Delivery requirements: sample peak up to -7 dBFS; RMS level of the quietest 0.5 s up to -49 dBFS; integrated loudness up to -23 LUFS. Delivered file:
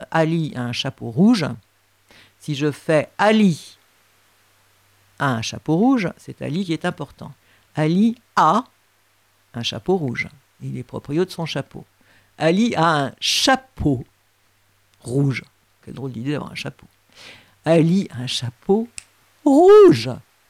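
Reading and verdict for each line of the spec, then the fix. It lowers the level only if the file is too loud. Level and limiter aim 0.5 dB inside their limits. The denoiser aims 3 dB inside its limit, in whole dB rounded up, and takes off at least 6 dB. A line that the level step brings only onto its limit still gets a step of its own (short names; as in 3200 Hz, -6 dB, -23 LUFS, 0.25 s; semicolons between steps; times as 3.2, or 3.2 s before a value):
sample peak -5.0 dBFS: fail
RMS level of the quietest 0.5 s -61 dBFS: OK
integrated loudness -19.0 LUFS: fail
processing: gain -4.5 dB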